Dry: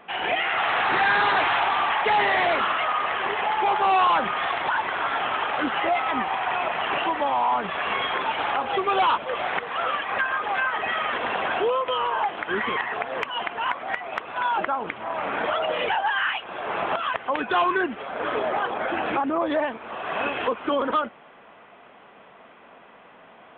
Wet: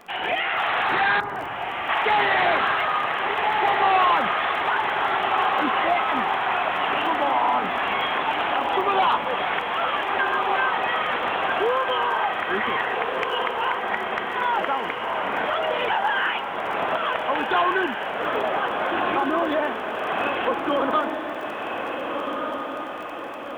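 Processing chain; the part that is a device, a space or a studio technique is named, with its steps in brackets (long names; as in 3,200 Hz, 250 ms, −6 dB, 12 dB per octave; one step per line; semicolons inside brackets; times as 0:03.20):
0:01.20–0:01.89: drawn EQ curve 160 Hz 0 dB, 2,100 Hz −13 dB, 3,200 Hz −27 dB
vinyl LP (surface crackle 24 per second −33 dBFS; pink noise bed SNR 44 dB)
feedback delay with all-pass diffusion 1,572 ms, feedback 53%, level −4 dB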